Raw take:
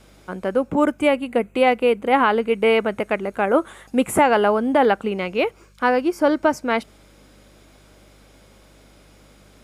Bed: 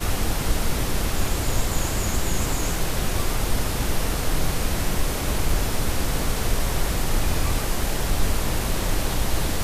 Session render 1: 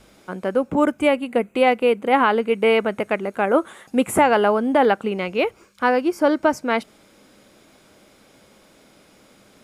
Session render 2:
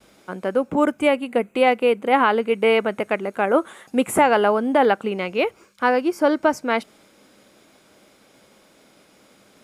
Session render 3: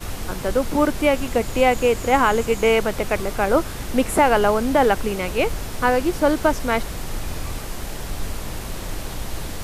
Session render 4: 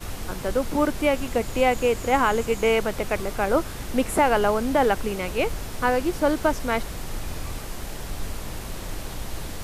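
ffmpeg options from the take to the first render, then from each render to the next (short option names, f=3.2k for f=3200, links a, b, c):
-af "bandreject=f=50:t=h:w=4,bandreject=f=100:t=h:w=4,bandreject=f=150:t=h:w=4"
-af "agate=range=-33dB:threshold=-51dB:ratio=3:detection=peak,lowshelf=f=97:g=-9"
-filter_complex "[1:a]volume=-6dB[a];[0:a][a]amix=inputs=2:normalize=0"
-af "volume=-3.5dB"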